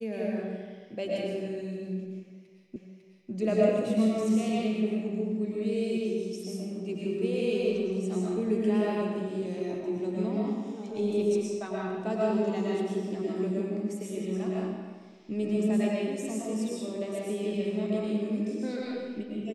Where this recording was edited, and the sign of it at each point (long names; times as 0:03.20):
0:02.76: the same again, the last 0.55 s